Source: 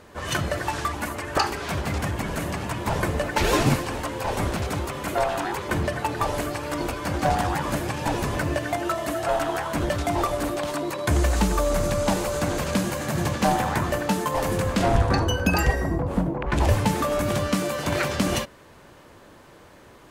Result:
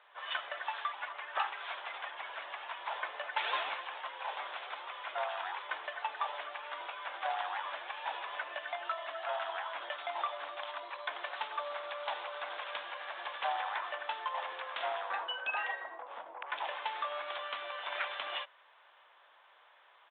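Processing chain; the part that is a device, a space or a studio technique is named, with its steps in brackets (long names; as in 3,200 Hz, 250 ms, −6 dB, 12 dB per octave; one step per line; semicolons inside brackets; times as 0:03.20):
musical greeting card (downsampling to 8,000 Hz; high-pass filter 750 Hz 24 dB per octave; parametric band 3,400 Hz +4.5 dB 0.28 octaves)
level −8.5 dB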